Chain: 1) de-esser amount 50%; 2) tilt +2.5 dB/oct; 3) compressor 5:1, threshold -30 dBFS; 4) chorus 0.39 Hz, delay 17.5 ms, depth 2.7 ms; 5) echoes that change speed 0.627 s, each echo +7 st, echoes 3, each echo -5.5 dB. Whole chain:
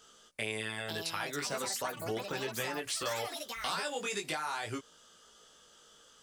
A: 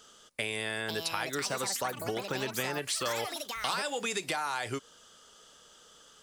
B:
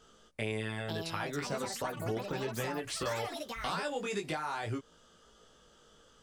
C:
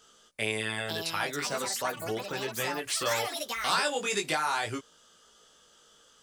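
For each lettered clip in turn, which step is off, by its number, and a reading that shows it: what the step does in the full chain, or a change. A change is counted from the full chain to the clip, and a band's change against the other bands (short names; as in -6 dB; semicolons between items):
4, crest factor change +2.0 dB; 2, 125 Hz band +7.5 dB; 3, mean gain reduction 3.0 dB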